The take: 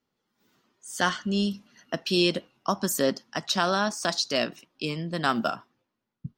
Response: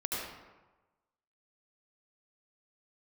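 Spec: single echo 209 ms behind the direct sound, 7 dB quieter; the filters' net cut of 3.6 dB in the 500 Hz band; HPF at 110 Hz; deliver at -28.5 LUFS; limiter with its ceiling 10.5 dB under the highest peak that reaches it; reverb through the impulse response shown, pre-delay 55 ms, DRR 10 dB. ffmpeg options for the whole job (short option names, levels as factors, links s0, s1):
-filter_complex "[0:a]highpass=110,equalizer=f=500:t=o:g=-5,alimiter=limit=0.0944:level=0:latency=1,aecho=1:1:209:0.447,asplit=2[s0][s1];[1:a]atrim=start_sample=2205,adelay=55[s2];[s1][s2]afir=irnorm=-1:irlink=0,volume=0.178[s3];[s0][s3]amix=inputs=2:normalize=0,volume=1.41"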